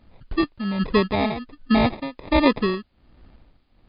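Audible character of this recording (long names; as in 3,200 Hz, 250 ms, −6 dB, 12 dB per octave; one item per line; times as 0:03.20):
aliases and images of a low sample rate 1,500 Hz, jitter 0%
tremolo triangle 1.3 Hz, depth 90%
a quantiser's noise floor 12 bits, dither triangular
MP3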